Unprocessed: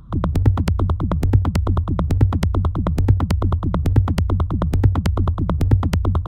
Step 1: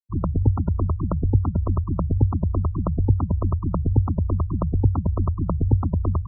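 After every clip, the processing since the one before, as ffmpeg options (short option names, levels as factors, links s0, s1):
-af "afftfilt=real='re*gte(hypot(re,im),0.158)':imag='im*gte(hypot(re,im),0.158)':win_size=1024:overlap=0.75,volume=0.668"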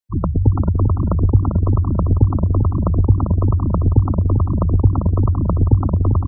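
-filter_complex "[0:a]asplit=2[s0][s1];[s1]adelay=395,lowpass=f=1200:p=1,volume=0.562,asplit=2[s2][s3];[s3]adelay=395,lowpass=f=1200:p=1,volume=0.31,asplit=2[s4][s5];[s5]adelay=395,lowpass=f=1200:p=1,volume=0.31,asplit=2[s6][s7];[s7]adelay=395,lowpass=f=1200:p=1,volume=0.31[s8];[s0][s2][s4][s6][s8]amix=inputs=5:normalize=0,volume=1.68"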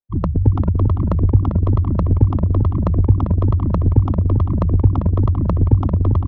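-af "adynamicsmooth=sensitivity=1:basefreq=1200"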